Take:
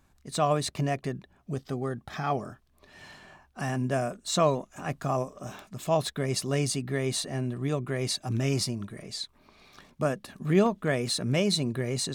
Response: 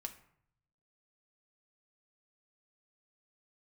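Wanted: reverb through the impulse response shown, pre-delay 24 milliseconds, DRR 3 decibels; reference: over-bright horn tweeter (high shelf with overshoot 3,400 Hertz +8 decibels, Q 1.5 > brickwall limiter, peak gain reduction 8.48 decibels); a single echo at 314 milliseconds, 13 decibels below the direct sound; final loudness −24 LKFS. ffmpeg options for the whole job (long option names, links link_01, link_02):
-filter_complex "[0:a]aecho=1:1:314:0.224,asplit=2[link_01][link_02];[1:a]atrim=start_sample=2205,adelay=24[link_03];[link_02][link_03]afir=irnorm=-1:irlink=0,volume=0dB[link_04];[link_01][link_04]amix=inputs=2:normalize=0,highshelf=frequency=3400:width_type=q:width=1.5:gain=8,volume=2.5dB,alimiter=limit=-11.5dB:level=0:latency=1"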